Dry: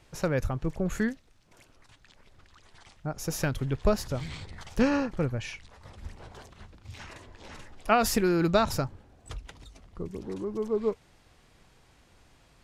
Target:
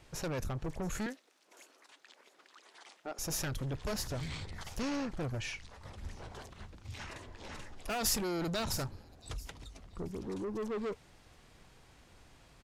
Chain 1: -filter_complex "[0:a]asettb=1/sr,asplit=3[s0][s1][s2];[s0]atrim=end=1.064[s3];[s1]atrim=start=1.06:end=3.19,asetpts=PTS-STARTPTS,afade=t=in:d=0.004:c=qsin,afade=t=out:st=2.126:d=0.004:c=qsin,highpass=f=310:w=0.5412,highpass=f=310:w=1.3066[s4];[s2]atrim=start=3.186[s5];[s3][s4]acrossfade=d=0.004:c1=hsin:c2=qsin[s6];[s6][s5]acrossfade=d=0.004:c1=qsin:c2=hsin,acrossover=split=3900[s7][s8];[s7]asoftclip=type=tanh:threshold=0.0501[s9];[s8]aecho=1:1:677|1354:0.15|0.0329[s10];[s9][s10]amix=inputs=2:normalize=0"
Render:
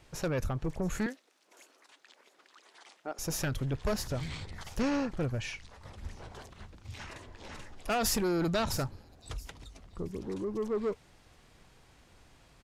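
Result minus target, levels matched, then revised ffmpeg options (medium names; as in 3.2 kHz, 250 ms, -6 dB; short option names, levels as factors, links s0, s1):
saturation: distortion -4 dB
-filter_complex "[0:a]asettb=1/sr,asplit=3[s0][s1][s2];[s0]atrim=end=1.064[s3];[s1]atrim=start=1.06:end=3.19,asetpts=PTS-STARTPTS,afade=t=in:d=0.004:c=qsin,afade=t=out:st=2.126:d=0.004:c=qsin,highpass=f=310:w=0.5412,highpass=f=310:w=1.3066[s4];[s2]atrim=start=3.186[s5];[s3][s4]acrossfade=d=0.004:c1=hsin:c2=qsin[s6];[s6][s5]acrossfade=d=0.004:c1=qsin:c2=hsin,acrossover=split=3900[s7][s8];[s7]asoftclip=type=tanh:threshold=0.0211[s9];[s8]aecho=1:1:677|1354:0.15|0.0329[s10];[s9][s10]amix=inputs=2:normalize=0"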